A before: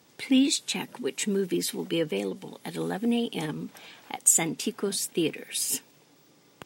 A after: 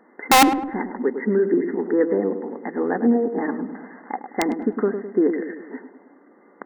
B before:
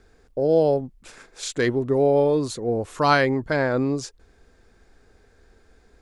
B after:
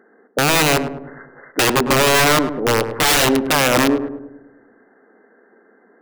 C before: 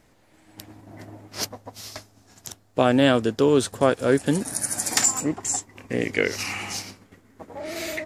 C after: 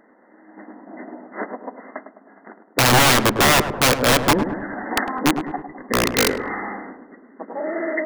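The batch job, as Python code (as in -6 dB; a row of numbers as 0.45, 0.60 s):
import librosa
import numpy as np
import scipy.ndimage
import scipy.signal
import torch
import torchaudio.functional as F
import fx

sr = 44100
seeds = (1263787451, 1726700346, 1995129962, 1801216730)

y = fx.brickwall_bandpass(x, sr, low_hz=190.0, high_hz=2100.0)
y = (np.mod(10.0 ** (17.0 / 20.0) * y + 1.0, 2.0) - 1.0) / 10.0 ** (17.0 / 20.0)
y = fx.echo_filtered(y, sr, ms=104, feedback_pct=56, hz=990.0, wet_db=-7.5)
y = y * 10.0 ** (-6 / 20.0) / np.max(np.abs(y))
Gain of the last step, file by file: +8.5, +7.5, +7.5 dB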